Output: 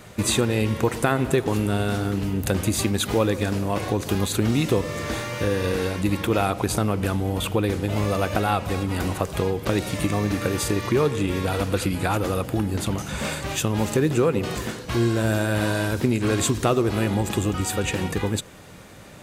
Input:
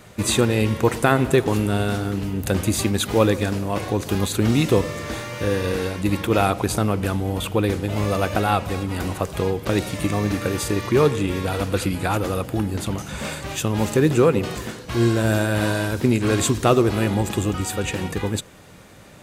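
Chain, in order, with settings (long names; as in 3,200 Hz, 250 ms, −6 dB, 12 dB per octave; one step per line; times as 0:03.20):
downward compressor 2 to 1, threshold −22 dBFS, peak gain reduction 6.5 dB
level +1.5 dB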